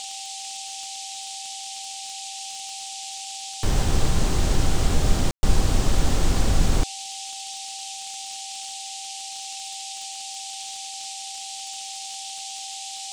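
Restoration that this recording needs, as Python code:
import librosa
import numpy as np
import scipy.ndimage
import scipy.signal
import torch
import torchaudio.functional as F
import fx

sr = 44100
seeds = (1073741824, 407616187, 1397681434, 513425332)

y = fx.fix_declick_ar(x, sr, threshold=6.5)
y = fx.notch(y, sr, hz=780.0, q=30.0)
y = fx.fix_ambience(y, sr, seeds[0], print_start_s=1.72, print_end_s=2.22, start_s=5.31, end_s=5.43)
y = fx.noise_reduce(y, sr, print_start_s=1.72, print_end_s=2.22, reduce_db=30.0)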